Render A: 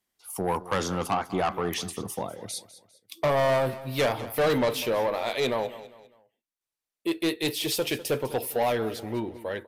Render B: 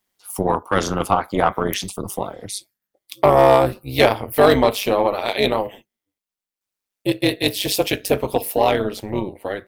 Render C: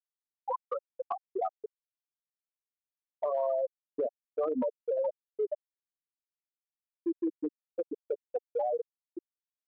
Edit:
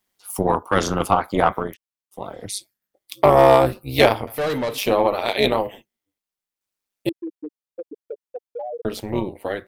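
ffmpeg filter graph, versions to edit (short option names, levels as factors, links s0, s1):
-filter_complex "[2:a]asplit=2[s0][s1];[1:a]asplit=4[s2][s3][s4][s5];[s2]atrim=end=1.77[s6];[s0]atrim=start=1.53:end=2.35[s7];[s3]atrim=start=2.11:end=4.272[s8];[0:a]atrim=start=4.268:end=4.782[s9];[s4]atrim=start=4.778:end=7.092[s10];[s1]atrim=start=7.088:end=8.852[s11];[s5]atrim=start=8.848[s12];[s6][s7]acrossfade=d=0.24:c1=tri:c2=tri[s13];[s13][s8]acrossfade=d=0.24:c1=tri:c2=tri[s14];[s14][s9]acrossfade=d=0.004:c1=hsin:c2=hsin[s15];[s15][s10]acrossfade=d=0.004:c1=hsin:c2=hsin[s16];[s16][s11]acrossfade=d=0.004:c1=hsin:c2=hsin[s17];[s17][s12]acrossfade=d=0.004:c1=hsin:c2=hsin"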